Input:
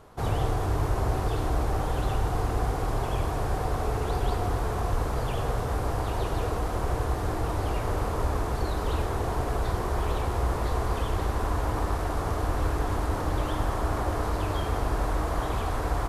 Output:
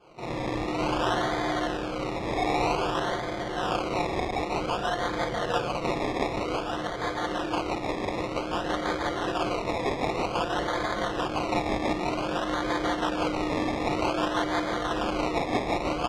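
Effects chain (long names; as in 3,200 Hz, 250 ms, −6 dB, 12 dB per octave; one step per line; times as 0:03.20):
comb filter 5.7 ms, depth 90%
0:06.26–0:08.48: hard clipping −23.5 dBFS, distortion −20 dB
high-pass filter 530 Hz 6 dB per octave
four-comb reverb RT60 0.71 s, combs from 26 ms, DRR −5.5 dB
rotating-speaker cabinet horn 0.65 Hz, later 6 Hz, at 0:03.35
sample-and-hold swept by an LFO 23×, swing 60% 0.53 Hz
low-pass filter 4,400 Hz 12 dB per octave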